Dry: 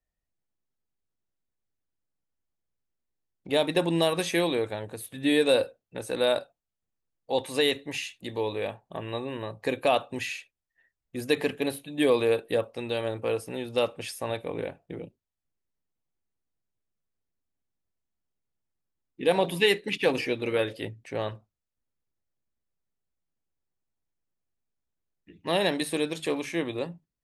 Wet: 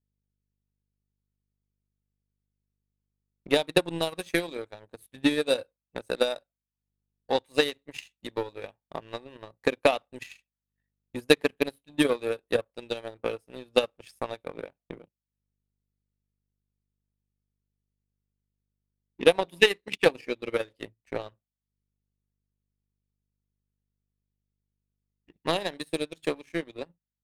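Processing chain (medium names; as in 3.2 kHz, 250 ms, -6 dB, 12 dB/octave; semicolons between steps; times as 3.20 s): hum 50 Hz, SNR 30 dB; transient shaper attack +11 dB, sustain -6 dB; power-law waveshaper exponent 1.4; trim -1.5 dB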